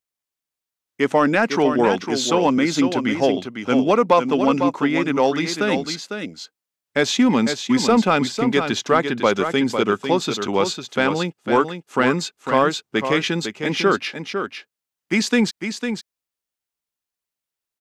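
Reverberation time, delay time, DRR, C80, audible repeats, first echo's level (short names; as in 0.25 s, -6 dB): none, 0.502 s, none, none, 1, -7.5 dB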